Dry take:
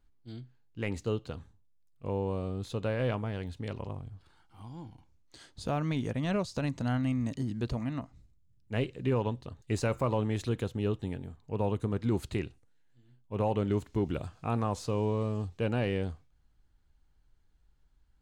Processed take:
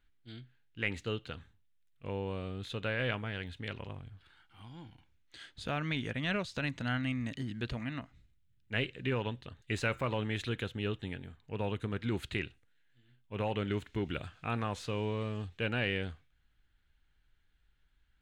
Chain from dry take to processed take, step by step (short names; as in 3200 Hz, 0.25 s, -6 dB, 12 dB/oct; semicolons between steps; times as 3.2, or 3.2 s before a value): band shelf 2300 Hz +11.5 dB; gain -5 dB